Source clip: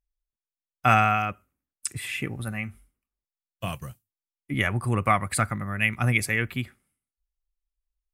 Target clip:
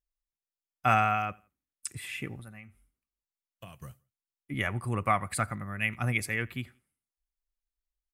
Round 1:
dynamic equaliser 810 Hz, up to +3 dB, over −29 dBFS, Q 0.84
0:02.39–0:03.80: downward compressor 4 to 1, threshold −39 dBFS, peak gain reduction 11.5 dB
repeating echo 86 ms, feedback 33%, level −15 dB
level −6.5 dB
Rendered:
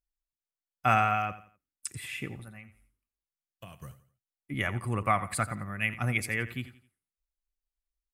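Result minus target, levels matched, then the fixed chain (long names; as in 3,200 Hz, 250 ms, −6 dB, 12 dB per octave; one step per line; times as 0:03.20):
echo-to-direct +11 dB
dynamic equaliser 810 Hz, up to +3 dB, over −29 dBFS, Q 0.84
0:02.39–0:03.80: downward compressor 4 to 1, threshold −39 dBFS, peak gain reduction 11.5 dB
repeating echo 86 ms, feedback 33%, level −26 dB
level −6.5 dB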